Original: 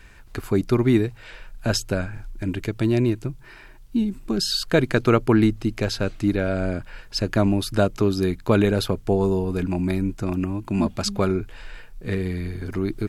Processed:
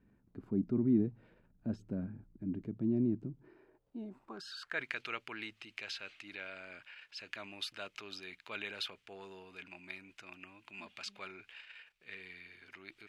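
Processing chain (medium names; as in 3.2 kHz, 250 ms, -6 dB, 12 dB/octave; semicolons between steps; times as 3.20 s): transient shaper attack -3 dB, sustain +6 dB; band-pass sweep 220 Hz -> 2.6 kHz, 3.24–5.00 s; trim -6 dB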